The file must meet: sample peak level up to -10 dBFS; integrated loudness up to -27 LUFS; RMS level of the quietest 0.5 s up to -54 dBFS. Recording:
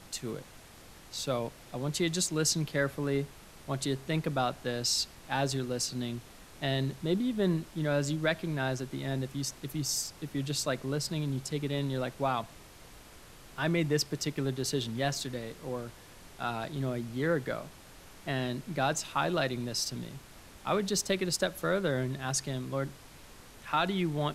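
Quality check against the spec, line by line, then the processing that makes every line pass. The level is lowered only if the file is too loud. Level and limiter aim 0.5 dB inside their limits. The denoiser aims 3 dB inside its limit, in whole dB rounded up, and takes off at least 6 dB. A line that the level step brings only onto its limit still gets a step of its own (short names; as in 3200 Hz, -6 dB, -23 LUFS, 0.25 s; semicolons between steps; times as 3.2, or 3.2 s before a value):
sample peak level -14.0 dBFS: OK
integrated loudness -32.5 LUFS: OK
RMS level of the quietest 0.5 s -52 dBFS: fail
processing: denoiser 6 dB, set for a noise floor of -52 dBFS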